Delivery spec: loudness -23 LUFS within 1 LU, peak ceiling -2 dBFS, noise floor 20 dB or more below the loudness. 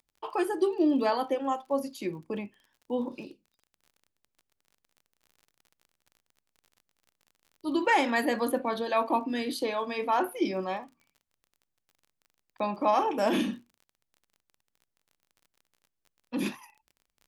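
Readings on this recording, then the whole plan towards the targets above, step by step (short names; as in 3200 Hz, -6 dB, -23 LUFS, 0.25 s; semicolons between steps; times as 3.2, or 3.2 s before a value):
ticks 36/s; loudness -29.5 LUFS; peak -13.0 dBFS; loudness target -23.0 LUFS
-> de-click; gain +6.5 dB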